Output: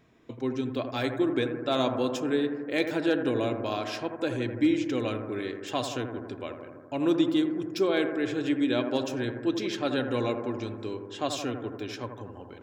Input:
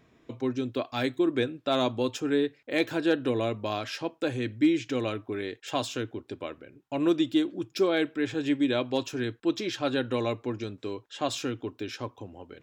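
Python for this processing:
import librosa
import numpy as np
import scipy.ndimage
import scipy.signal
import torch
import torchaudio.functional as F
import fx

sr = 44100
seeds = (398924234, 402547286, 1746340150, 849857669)

y = fx.echo_bbd(x, sr, ms=83, stages=1024, feedback_pct=72, wet_db=-7.5)
y = y * 10.0 ** (-1.0 / 20.0)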